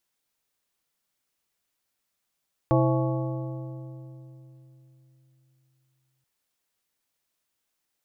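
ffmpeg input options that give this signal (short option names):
-f lavfi -i "aevalsrc='0.1*pow(10,-3*t/3.93)*sin(2*PI*131*t)+0.0794*pow(10,-3*t/2.985)*sin(2*PI*327.5*t)+0.0631*pow(10,-3*t/2.593)*sin(2*PI*524*t)+0.0501*pow(10,-3*t/2.425)*sin(2*PI*655*t)+0.0398*pow(10,-3*t/2.241)*sin(2*PI*851.5*t)+0.0316*pow(10,-3*t/2.068)*sin(2*PI*1113.5*t)':d=3.53:s=44100"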